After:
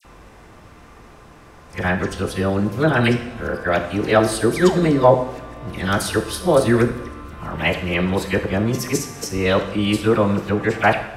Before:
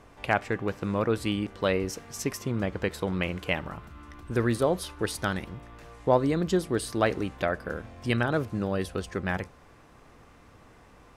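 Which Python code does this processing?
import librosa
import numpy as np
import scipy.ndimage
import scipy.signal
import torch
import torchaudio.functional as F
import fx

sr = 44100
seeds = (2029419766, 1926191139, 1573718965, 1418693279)

y = np.flip(x).copy()
y = fx.dispersion(y, sr, late='lows', ms=49.0, hz=2100.0)
y = fx.spec_paint(y, sr, seeds[0], shape='fall', start_s=4.56, length_s=0.31, low_hz=210.0, high_hz=2500.0, level_db=-36.0)
y = fx.rev_double_slope(y, sr, seeds[1], early_s=0.76, late_s=2.4, knee_db=-18, drr_db=5.5)
y = y * librosa.db_to_amplitude(8.5)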